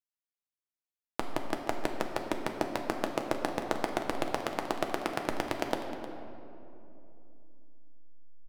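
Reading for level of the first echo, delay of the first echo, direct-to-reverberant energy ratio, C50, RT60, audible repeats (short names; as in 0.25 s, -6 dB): -15.0 dB, 0.309 s, 2.5 dB, 5.5 dB, 2.9 s, 1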